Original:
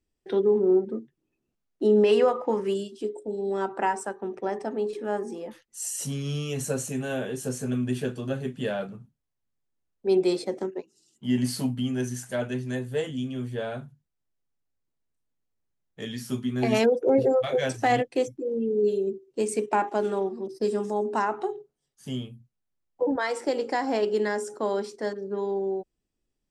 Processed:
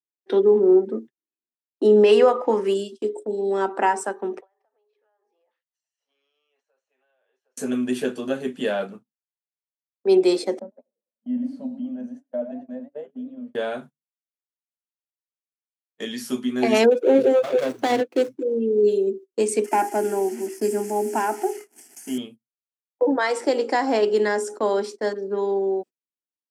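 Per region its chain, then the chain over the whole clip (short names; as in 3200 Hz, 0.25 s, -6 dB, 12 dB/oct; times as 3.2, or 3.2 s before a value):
4.41–7.57 HPF 580 Hz 24 dB/oct + compressor 16:1, threshold -42 dBFS + air absorption 270 m
10.59–13.55 double band-pass 360 Hz, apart 1.3 oct + warbling echo 99 ms, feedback 39%, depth 210 cents, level -12 dB
16.91–18.43 median filter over 25 samples + bell 740 Hz -5 dB 0.34 oct
19.64–22.18 delta modulation 64 kbps, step -40 dBFS + tone controls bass +8 dB, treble +8 dB + fixed phaser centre 770 Hz, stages 8
whole clip: gate -41 dBFS, range -29 dB; HPF 220 Hz 24 dB/oct; gain +5.5 dB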